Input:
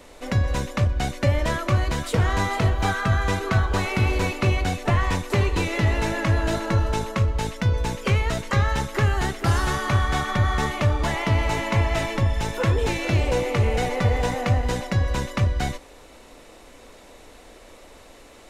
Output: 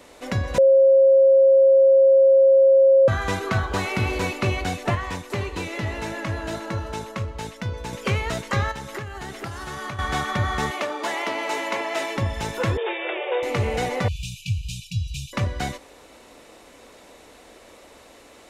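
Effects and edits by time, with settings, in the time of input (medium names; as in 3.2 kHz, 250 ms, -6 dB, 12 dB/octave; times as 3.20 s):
0.58–3.08 s: bleep 539 Hz -10.5 dBFS
4.95–7.93 s: gain -4.5 dB
8.71–9.99 s: compression 12:1, threshold -27 dBFS
10.71–12.17 s: high-pass 290 Hz 24 dB/octave
12.77–13.43 s: brick-wall FIR band-pass 330–3800 Hz
14.08–15.33 s: brick-wall FIR band-stop 180–2300 Hz
whole clip: high-pass 120 Hz 6 dB/octave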